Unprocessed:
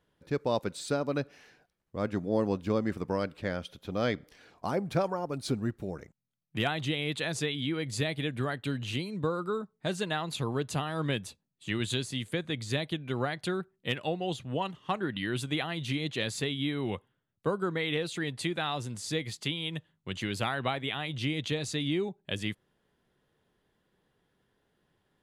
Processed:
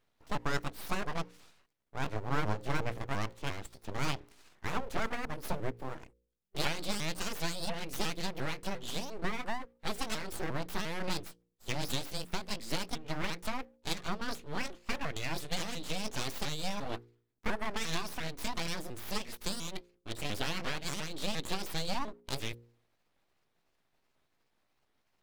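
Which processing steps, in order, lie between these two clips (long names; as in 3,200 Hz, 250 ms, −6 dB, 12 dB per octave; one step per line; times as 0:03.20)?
pitch shifter swept by a sawtooth +6.5 semitones, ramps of 350 ms
full-wave rectification
hum removal 58.96 Hz, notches 9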